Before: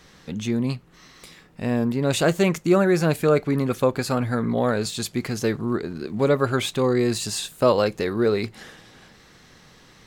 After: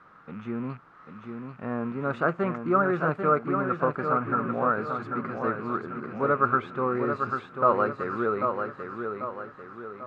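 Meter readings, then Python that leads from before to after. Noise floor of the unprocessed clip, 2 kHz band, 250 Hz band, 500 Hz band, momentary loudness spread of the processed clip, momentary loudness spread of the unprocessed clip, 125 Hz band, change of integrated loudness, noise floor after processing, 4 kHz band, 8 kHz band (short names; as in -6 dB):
-52 dBFS, -2.0 dB, -7.5 dB, -6.0 dB, 16 LU, 8 LU, -9.5 dB, -4.5 dB, -52 dBFS, under -20 dB, under -35 dB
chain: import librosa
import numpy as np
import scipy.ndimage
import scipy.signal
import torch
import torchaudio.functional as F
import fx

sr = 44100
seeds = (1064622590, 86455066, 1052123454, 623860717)

p1 = fx.rattle_buzz(x, sr, strikes_db=-33.0, level_db=-29.0)
p2 = scipy.signal.sosfilt(scipy.signal.butter(2, 120.0, 'highpass', fs=sr, output='sos'), p1)
p3 = fx.quant_dither(p2, sr, seeds[0], bits=8, dither='triangular')
p4 = fx.lowpass_res(p3, sr, hz=1300.0, q=6.8)
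p5 = p4 + fx.echo_feedback(p4, sr, ms=792, feedback_pct=45, wet_db=-6.0, dry=0)
y = p5 * librosa.db_to_amplitude(-8.5)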